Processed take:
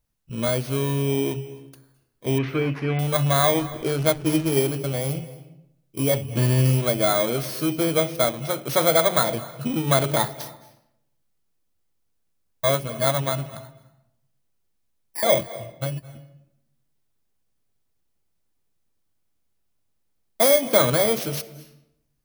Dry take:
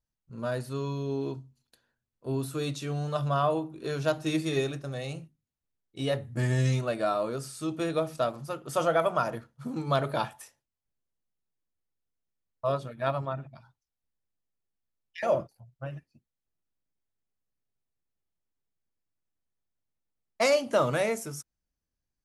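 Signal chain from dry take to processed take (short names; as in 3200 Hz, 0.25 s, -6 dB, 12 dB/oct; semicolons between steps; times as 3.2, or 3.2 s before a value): FFT order left unsorted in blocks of 16 samples; in parallel at +0.5 dB: compressor, threshold -36 dBFS, peak gain reduction 15.5 dB; 2.38–2.99 on the sum: synth low-pass 2100 Hz, resonance Q 2.6; 3.59–4.52 backlash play -31.5 dBFS; on a send at -16 dB: reverb RT60 0.80 s, pre-delay 0.206 s; on the sum: gain +5 dB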